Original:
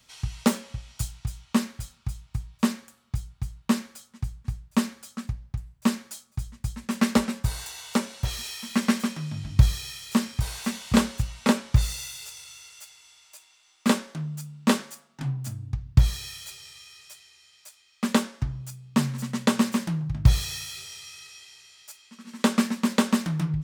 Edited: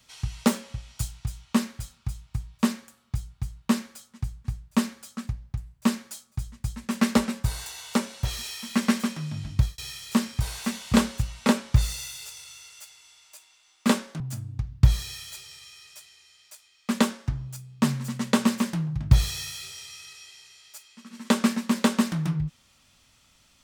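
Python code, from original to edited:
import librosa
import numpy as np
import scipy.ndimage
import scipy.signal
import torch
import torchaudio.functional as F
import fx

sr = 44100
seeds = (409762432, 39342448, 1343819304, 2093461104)

y = fx.edit(x, sr, fx.fade_out_span(start_s=9.47, length_s=0.31),
    fx.cut(start_s=14.2, length_s=1.14), tone=tone)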